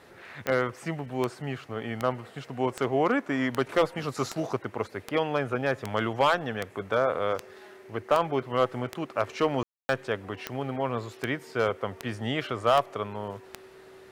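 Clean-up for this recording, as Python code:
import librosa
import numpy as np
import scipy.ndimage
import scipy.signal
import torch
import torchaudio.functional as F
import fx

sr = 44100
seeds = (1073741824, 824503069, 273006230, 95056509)

y = fx.fix_declick_ar(x, sr, threshold=10.0)
y = fx.notch(y, sr, hz=380.0, q=30.0)
y = fx.fix_ambience(y, sr, seeds[0], print_start_s=13.59, print_end_s=14.09, start_s=9.63, end_s=9.89)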